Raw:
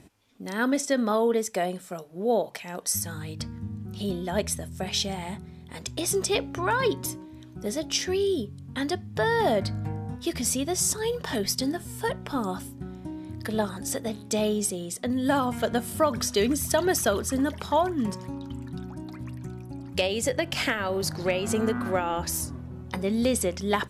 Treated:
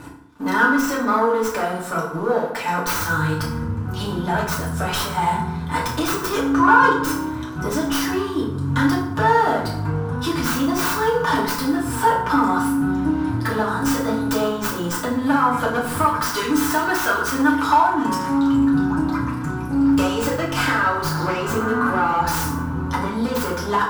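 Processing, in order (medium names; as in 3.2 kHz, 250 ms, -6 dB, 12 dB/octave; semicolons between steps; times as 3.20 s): tracing distortion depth 0.21 ms; 15.99–18.55 s: bass shelf 460 Hz -9.5 dB; compression 5:1, threshold -36 dBFS, peak gain reduction 16 dB; waveshaping leveller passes 3; high-order bell 1.2 kHz +12 dB 1 oct; FDN reverb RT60 0.76 s, low-frequency decay 1.25×, high-frequency decay 0.65×, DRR -5.5 dB; trim -2 dB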